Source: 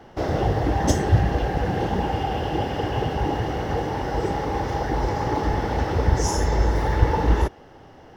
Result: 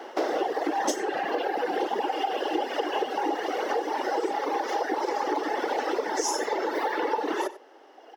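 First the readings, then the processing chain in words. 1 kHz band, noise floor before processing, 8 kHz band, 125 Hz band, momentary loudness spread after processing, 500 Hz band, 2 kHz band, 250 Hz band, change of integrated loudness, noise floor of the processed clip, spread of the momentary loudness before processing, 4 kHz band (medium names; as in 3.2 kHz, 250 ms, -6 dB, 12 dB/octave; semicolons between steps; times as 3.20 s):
-1.0 dB, -47 dBFS, -1.0 dB, under -40 dB, 1 LU, -1.5 dB, -0.5 dB, -6.0 dB, -4.5 dB, -52 dBFS, 5 LU, -1.0 dB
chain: reverb removal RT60 1.9 s; steep high-pass 310 Hz 36 dB/octave; compression 4:1, threshold -33 dBFS, peak gain reduction 11.5 dB; echo from a far wall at 16 m, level -16 dB; trim +8 dB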